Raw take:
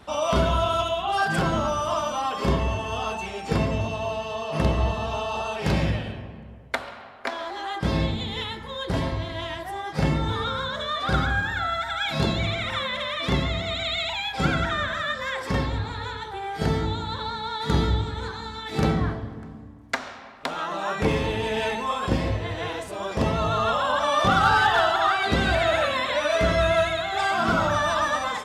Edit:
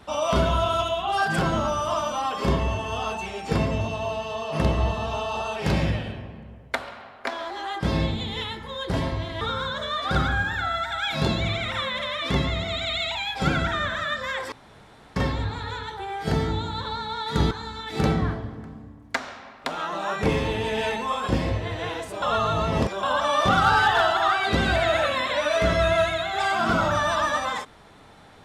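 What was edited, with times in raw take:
9.41–10.39 s: delete
15.50 s: insert room tone 0.64 s
17.85–18.30 s: delete
23.01–23.82 s: reverse

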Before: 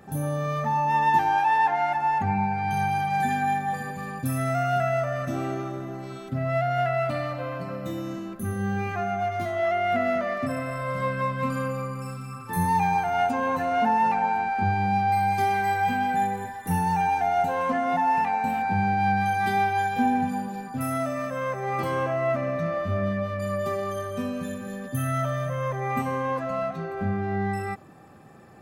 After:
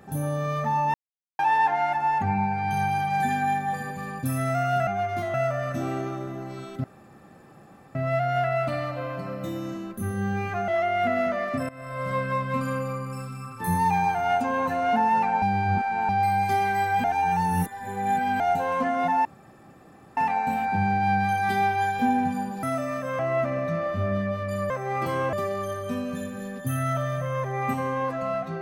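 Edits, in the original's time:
0.94–1.39 s: mute
6.37 s: insert room tone 1.11 s
9.10–9.57 s: move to 4.87 s
10.58–10.97 s: fade in linear, from -19 dB
14.31–14.98 s: reverse
15.93–17.29 s: reverse
18.14 s: insert room tone 0.92 s
20.60–20.91 s: delete
21.47–22.10 s: move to 23.61 s

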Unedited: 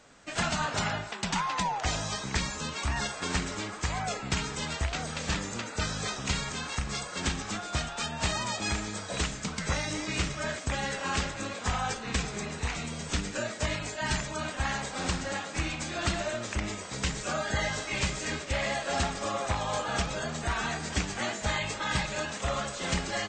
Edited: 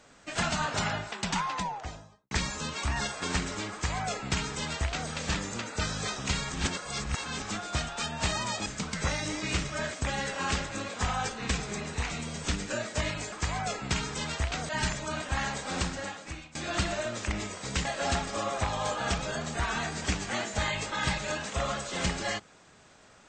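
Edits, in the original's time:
1.31–2.31 s: studio fade out
3.73–5.10 s: copy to 13.97 s
6.53–7.40 s: reverse
8.66–9.31 s: delete
15.07–15.83 s: fade out, to -21.5 dB
17.13–18.73 s: delete

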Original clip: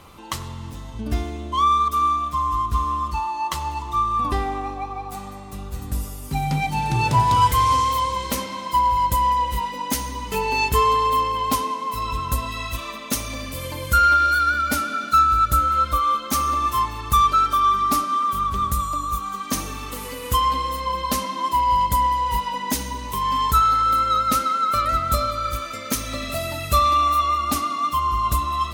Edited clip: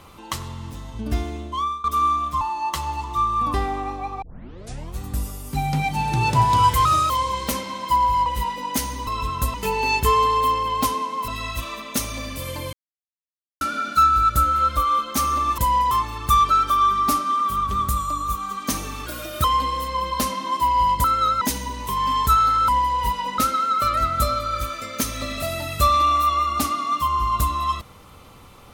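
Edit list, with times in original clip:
1.37–1.84 s: fade out, to -21.5 dB
2.41–3.19 s: delete
5.00 s: tape start 0.77 s
7.63–7.93 s: speed 120%
9.09–9.42 s: move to 16.74 s
11.97–12.44 s: move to 10.23 s
13.89–14.77 s: mute
19.89–20.36 s: speed 123%
21.96–22.66 s: swap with 23.93–24.30 s

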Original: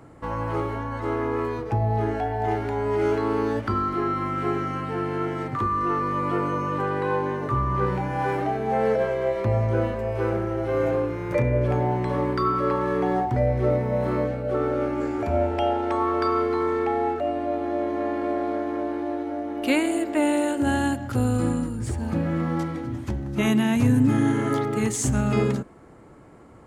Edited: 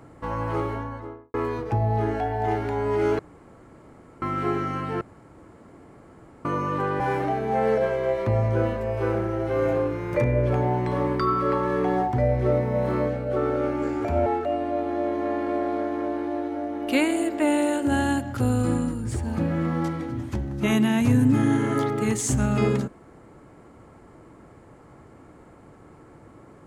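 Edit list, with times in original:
0.66–1.34 s: studio fade out
3.19–4.22 s: room tone
5.01–6.45 s: room tone
7.00–8.18 s: delete
15.44–17.01 s: delete

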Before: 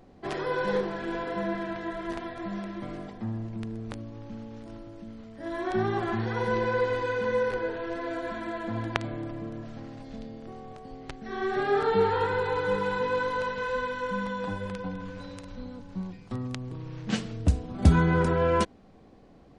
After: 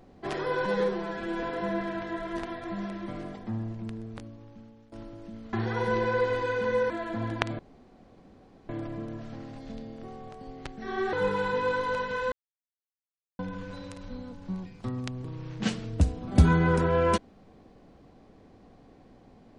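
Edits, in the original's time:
0.65–1.17 s: stretch 1.5×
3.33–4.66 s: fade out, to -16 dB
5.27–6.13 s: delete
7.50–8.44 s: delete
9.13 s: insert room tone 1.10 s
11.57–12.60 s: delete
13.79–14.86 s: mute

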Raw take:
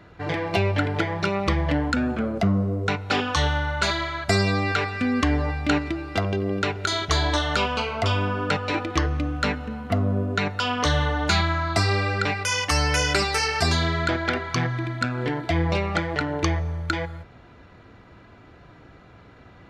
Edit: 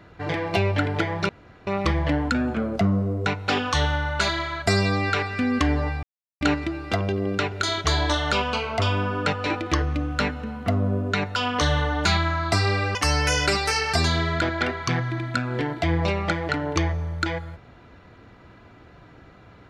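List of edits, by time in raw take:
1.29 s: insert room tone 0.38 s
5.65 s: insert silence 0.38 s
12.19–12.62 s: delete

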